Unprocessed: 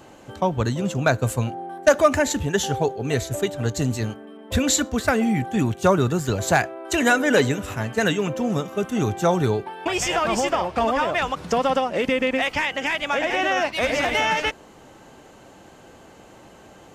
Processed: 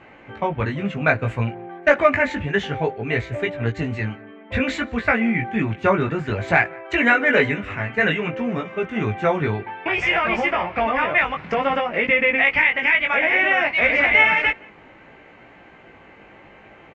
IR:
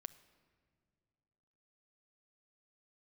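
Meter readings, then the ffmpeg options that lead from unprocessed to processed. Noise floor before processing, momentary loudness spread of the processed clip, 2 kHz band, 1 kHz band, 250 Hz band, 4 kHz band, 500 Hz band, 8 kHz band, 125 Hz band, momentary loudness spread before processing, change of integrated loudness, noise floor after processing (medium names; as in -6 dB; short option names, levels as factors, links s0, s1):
-48 dBFS, 10 LU, +7.5 dB, +0.5 dB, -1.5 dB, -2.5 dB, -0.5 dB, under -20 dB, -1.5 dB, 7 LU, +2.5 dB, -47 dBFS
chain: -filter_complex "[0:a]flanger=delay=17:depth=2.8:speed=0.58,lowpass=f=2200:t=q:w=4.5,asplit=2[s0][s1];[s1]adelay=174.9,volume=0.0501,highshelf=f=4000:g=-3.94[s2];[s0][s2]amix=inputs=2:normalize=0,volume=1.19"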